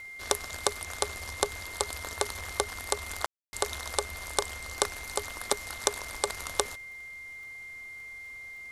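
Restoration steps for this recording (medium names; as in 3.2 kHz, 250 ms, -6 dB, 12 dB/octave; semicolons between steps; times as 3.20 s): de-click; band-stop 2.1 kHz, Q 30; room tone fill 3.26–3.53 s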